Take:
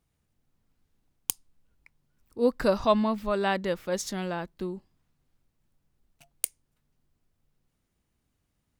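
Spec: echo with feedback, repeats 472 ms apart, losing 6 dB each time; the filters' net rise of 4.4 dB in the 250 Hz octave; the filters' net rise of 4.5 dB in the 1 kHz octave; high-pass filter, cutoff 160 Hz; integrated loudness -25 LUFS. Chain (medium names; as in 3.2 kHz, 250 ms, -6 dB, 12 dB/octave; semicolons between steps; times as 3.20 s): high-pass 160 Hz; peaking EQ 250 Hz +6.5 dB; peaking EQ 1 kHz +5 dB; feedback delay 472 ms, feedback 50%, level -6 dB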